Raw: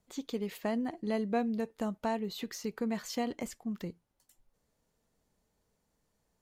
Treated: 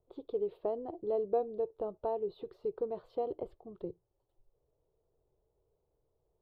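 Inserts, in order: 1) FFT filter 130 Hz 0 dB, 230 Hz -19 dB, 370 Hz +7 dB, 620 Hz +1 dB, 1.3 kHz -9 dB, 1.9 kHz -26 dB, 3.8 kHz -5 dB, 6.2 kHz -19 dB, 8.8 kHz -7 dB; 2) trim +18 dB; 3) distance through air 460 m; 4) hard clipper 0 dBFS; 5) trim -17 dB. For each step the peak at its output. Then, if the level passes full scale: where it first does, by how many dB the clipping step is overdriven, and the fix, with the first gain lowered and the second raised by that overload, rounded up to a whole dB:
-20.0 dBFS, -2.0 dBFS, -3.0 dBFS, -3.0 dBFS, -20.0 dBFS; nothing clips

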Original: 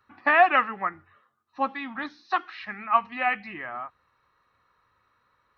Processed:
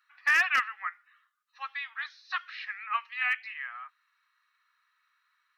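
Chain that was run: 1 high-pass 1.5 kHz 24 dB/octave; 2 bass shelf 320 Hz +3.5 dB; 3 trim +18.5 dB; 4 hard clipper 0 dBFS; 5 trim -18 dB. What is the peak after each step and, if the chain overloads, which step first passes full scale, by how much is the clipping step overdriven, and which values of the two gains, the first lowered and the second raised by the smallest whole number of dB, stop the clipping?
-12.5 dBFS, -12.5 dBFS, +6.0 dBFS, 0.0 dBFS, -18.0 dBFS; step 3, 6.0 dB; step 3 +12.5 dB, step 5 -12 dB

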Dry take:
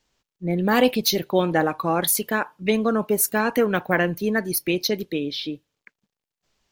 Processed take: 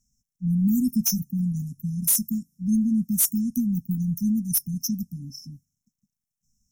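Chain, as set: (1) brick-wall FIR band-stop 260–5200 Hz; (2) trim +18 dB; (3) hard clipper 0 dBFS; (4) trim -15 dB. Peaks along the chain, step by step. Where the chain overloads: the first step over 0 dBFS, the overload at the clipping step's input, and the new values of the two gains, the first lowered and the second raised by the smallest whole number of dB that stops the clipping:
-8.5 dBFS, +9.5 dBFS, 0.0 dBFS, -15.0 dBFS; step 2, 9.5 dB; step 2 +8 dB, step 4 -5 dB

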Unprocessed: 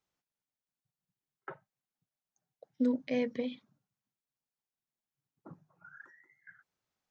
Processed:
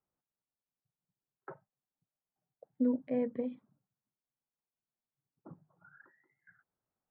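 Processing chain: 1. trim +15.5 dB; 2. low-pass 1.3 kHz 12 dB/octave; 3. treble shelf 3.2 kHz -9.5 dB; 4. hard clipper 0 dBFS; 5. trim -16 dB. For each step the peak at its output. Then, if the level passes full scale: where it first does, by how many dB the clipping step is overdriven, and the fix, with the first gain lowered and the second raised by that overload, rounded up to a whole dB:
-5.0 dBFS, -5.0 dBFS, -5.0 dBFS, -5.0 dBFS, -21.0 dBFS; nothing clips

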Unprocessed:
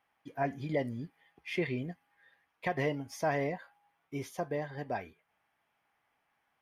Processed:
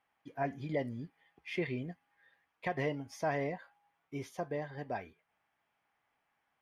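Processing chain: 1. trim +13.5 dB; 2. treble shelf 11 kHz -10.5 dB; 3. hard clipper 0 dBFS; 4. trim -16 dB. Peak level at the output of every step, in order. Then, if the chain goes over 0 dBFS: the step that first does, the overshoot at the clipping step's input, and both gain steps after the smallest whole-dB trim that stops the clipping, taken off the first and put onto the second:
-6.0 dBFS, -6.0 dBFS, -6.0 dBFS, -22.0 dBFS; nothing clips

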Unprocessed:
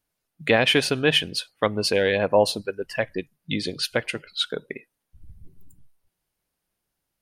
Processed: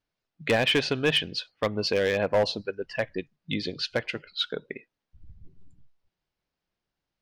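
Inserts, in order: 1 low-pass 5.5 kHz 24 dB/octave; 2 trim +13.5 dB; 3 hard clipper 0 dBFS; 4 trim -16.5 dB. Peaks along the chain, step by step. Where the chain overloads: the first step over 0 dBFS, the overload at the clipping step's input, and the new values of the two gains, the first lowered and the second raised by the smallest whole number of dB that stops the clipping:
-5.5 dBFS, +8.0 dBFS, 0.0 dBFS, -16.5 dBFS; step 2, 8.0 dB; step 2 +5.5 dB, step 4 -8.5 dB

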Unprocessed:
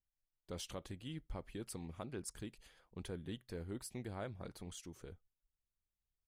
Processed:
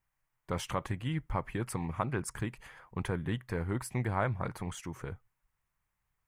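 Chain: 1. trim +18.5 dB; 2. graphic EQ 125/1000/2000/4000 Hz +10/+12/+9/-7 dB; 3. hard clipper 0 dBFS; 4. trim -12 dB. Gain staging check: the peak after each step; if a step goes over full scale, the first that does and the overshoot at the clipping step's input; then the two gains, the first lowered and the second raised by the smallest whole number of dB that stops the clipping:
-13.0 dBFS, -4.5 dBFS, -4.5 dBFS, -16.5 dBFS; nothing clips

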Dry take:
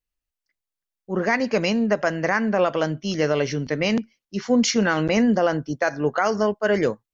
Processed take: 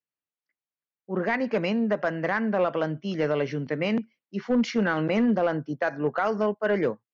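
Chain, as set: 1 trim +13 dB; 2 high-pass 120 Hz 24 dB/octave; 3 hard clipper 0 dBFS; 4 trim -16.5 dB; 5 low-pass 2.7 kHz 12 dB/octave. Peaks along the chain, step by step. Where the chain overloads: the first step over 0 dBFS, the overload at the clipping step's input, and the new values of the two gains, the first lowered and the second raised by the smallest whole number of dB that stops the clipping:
+5.5 dBFS, +5.0 dBFS, 0.0 dBFS, -16.5 dBFS, -16.0 dBFS; step 1, 5.0 dB; step 1 +8 dB, step 4 -11.5 dB

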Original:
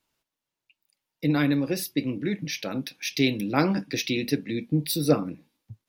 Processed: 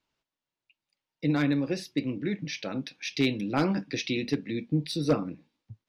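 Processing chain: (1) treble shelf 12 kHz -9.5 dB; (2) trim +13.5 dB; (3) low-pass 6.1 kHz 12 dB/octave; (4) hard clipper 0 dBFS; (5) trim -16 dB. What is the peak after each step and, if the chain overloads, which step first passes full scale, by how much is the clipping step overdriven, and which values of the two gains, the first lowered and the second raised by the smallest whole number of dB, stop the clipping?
-5.5 dBFS, +8.0 dBFS, +8.0 dBFS, 0.0 dBFS, -16.0 dBFS; step 2, 8.0 dB; step 2 +5.5 dB, step 5 -8 dB

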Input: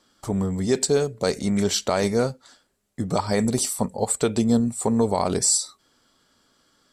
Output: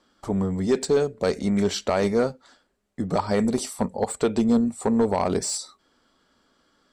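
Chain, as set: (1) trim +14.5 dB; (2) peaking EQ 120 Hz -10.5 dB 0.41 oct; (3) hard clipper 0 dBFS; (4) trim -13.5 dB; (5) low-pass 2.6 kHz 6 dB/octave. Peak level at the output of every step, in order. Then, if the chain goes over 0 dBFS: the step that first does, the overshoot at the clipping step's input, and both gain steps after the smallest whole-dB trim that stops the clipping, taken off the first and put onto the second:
+6.5 dBFS, +6.0 dBFS, 0.0 dBFS, -13.5 dBFS, -13.5 dBFS; step 1, 6.0 dB; step 1 +8.5 dB, step 4 -7.5 dB

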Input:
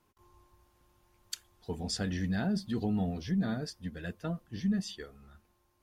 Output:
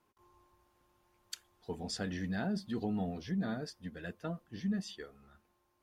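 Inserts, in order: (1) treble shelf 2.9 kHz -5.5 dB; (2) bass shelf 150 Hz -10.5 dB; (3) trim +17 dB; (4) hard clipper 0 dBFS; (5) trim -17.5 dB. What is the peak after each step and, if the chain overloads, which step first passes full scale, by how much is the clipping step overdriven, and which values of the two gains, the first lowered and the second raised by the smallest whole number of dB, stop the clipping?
-22.5 dBFS, -23.0 dBFS, -6.0 dBFS, -6.0 dBFS, -23.5 dBFS; nothing clips

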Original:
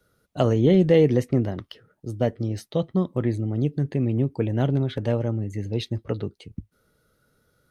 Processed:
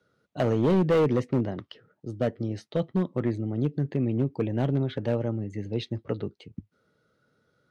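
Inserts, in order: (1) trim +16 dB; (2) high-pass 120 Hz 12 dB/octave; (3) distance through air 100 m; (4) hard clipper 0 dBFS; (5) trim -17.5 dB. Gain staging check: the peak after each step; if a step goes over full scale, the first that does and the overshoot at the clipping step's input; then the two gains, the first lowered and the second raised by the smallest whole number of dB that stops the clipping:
+9.0 dBFS, +9.0 dBFS, +9.0 dBFS, 0.0 dBFS, -17.5 dBFS; step 1, 9.0 dB; step 1 +7 dB, step 5 -8.5 dB

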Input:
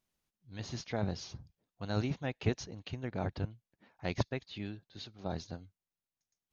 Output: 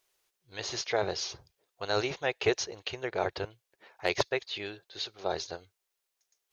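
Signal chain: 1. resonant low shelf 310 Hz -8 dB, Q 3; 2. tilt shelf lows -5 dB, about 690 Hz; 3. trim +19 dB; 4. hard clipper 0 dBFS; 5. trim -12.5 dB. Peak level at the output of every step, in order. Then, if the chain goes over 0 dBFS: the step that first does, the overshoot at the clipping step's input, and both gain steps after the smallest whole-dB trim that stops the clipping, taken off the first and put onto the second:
-14.5 dBFS, -14.0 dBFS, +5.0 dBFS, 0.0 dBFS, -12.5 dBFS; step 3, 5.0 dB; step 3 +14 dB, step 5 -7.5 dB

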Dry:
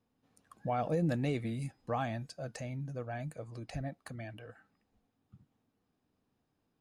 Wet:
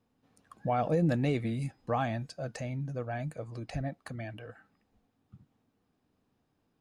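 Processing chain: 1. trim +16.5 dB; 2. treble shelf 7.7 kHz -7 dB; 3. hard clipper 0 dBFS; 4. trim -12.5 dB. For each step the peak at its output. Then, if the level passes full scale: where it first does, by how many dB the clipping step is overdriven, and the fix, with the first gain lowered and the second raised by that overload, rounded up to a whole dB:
-6.0 dBFS, -6.0 dBFS, -6.0 dBFS, -18.5 dBFS; nothing clips

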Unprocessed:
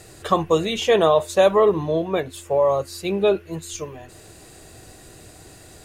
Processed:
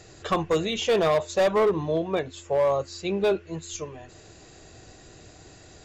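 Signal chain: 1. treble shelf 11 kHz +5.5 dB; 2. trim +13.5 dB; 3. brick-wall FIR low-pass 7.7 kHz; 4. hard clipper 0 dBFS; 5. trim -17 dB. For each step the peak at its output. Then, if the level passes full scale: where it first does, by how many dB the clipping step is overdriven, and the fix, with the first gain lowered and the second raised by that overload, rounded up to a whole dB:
-4.5 dBFS, +9.0 dBFS, +9.0 dBFS, 0.0 dBFS, -17.0 dBFS; step 2, 9.0 dB; step 2 +4.5 dB, step 5 -8 dB

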